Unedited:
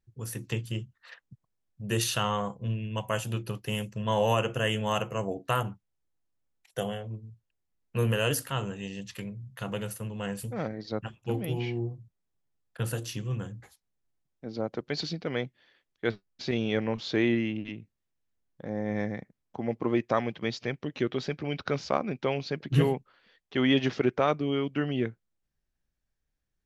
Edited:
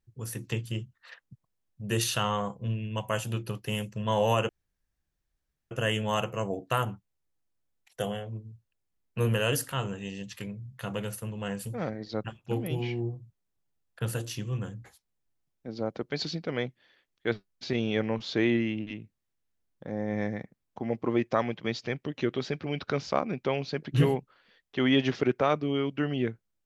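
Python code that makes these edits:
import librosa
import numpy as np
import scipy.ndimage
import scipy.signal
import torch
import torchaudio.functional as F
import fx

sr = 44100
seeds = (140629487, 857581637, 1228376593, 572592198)

y = fx.edit(x, sr, fx.insert_room_tone(at_s=4.49, length_s=1.22), tone=tone)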